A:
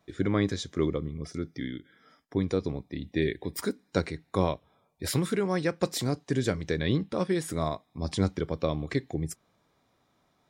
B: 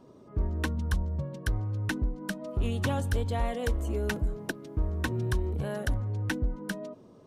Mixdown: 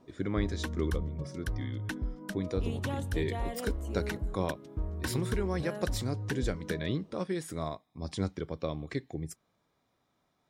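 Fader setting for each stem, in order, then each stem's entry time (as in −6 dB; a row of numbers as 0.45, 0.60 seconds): −6.0, −5.5 decibels; 0.00, 0.00 seconds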